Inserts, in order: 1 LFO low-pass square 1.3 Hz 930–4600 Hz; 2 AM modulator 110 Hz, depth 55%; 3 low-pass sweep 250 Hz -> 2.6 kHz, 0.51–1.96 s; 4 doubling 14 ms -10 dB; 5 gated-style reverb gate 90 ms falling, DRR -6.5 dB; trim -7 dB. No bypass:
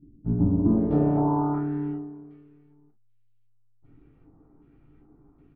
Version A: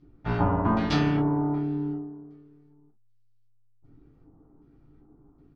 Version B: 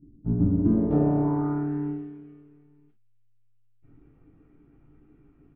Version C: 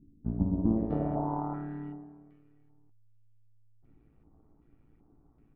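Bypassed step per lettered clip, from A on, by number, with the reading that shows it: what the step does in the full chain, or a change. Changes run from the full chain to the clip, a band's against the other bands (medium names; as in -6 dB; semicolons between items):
3, 1 kHz band +3.5 dB; 1, 1 kHz band -5.0 dB; 5, momentary loudness spread change +2 LU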